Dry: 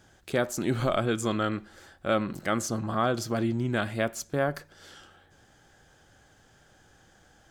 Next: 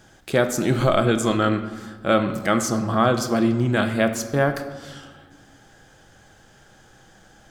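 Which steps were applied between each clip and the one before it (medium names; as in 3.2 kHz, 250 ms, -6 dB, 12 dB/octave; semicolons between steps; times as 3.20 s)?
reverberation RT60 1.4 s, pre-delay 4 ms, DRR 7.5 dB; trim +6.5 dB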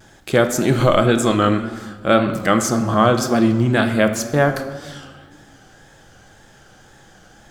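vibrato 1.9 Hz 68 cents; Schroeder reverb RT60 1.6 s, combs from 27 ms, DRR 18.5 dB; trim +4 dB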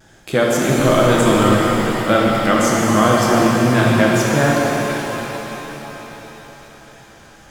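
pitch-shifted reverb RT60 4 s, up +7 st, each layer -8 dB, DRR -3 dB; trim -2.5 dB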